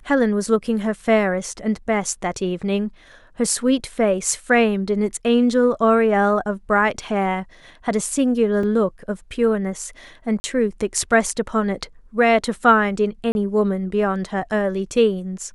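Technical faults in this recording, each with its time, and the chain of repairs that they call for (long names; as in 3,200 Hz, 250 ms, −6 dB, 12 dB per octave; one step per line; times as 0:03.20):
0:08.63: drop-out 3.3 ms
0:10.40–0:10.44: drop-out 40 ms
0:13.32–0:13.35: drop-out 31 ms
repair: repair the gap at 0:08.63, 3.3 ms
repair the gap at 0:10.40, 40 ms
repair the gap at 0:13.32, 31 ms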